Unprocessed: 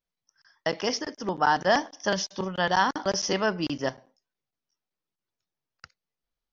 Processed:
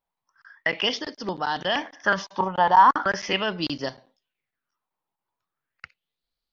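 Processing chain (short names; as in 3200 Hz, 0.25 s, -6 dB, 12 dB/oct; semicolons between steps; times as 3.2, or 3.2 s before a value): bell 5900 Hz -9.5 dB 0.8 oct; limiter -17 dBFS, peak gain reduction 6.5 dB; LFO bell 0.39 Hz 860–4500 Hz +17 dB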